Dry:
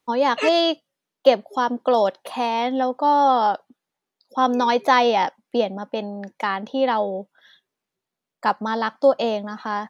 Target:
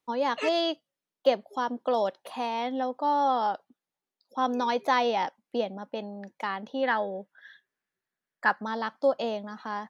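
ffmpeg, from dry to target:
ffmpeg -i in.wav -filter_complex "[0:a]asettb=1/sr,asplit=3[link_01][link_02][link_03];[link_01]atrim=end=6.834[link_04];[link_02]atrim=start=6.83:end=8.64,asetpts=PTS-STARTPTS,afade=type=in:duration=0.004:curve=qsin,afade=type=out:start_time=1.806:duration=0.004:curve=qsin,equalizer=frequency=1700:width=2.6:gain=14[link_05];[link_03]atrim=start=8.636[link_06];[link_04][link_05]acrossfade=duration=0.004:curve1=hsin:curve2=qsin[link_07];[link_07][link_06]acrossfade=duration=0.004:curve1=qsin:curve2=hsin,volume=-8dB" out.wav

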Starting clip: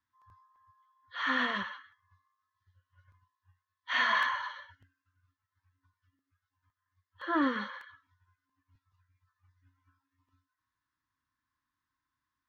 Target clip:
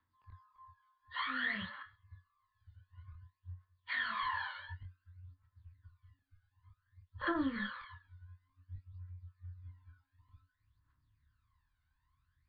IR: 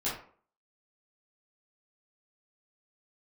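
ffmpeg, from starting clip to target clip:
-filter_complex "[0:a]acrossover=split=240[link_01][link_02];[link_02]acompressor=threshold=-32dB:ratio=3[link_03];[link_01][link_03]amix=inputs=2:normalize=0,asubboost=boost=7:cutoff=120,alimiter=level_in=6.5dB:limit=-24dB:level=0:latency=1:release=452,volume=-6.5dB,flanger=delay=22.5:depth=6.1:speed=0.23,asettb=1/sr,asplit=3[link_04][link_05][link_06];[link_04]atrim=end=1.224[link_07];[link_05]atrim=start=1.22:end=1.78,asetpts=PTS-STARTPTS,afade=type=in:duration=0.004:curve=qsin,afade=type=out:start_time=0.556:duration=0.004:curve=qsin,equalizer=frequency=400:width_type=o:width=0.33:gain=-8,equalizer=frequency=1000:width_type=o:width=0.33:gain=-5,equalizer=frequency=2000:width_type=o:width=0.33:gain=5[link_08];[link_06]atrim=start=1.776[link_09];[link_07][link_08]acrossfade=duration=0.004:curve1=hsin:curve2=qsin[link_10];[link_10][link_09]acrossfade=duration=0.004:curve1=qsin:curve2=hsin,aphaser=in_gain=1:out_gain=1:delay=1.4:decay=0.68:speed=0.55:type=triangular,volume=3dB" -ar 11025 -c:a libmp3lame -b:a 40k

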